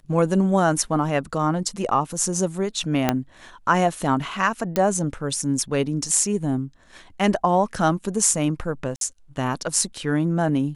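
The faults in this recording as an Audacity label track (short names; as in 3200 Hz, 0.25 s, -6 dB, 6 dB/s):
3.090000	3.090000	pop -4 dBFS
4.760000	4.760000	pop -8 dBFS
8.960000	9.010000	gap 52 ms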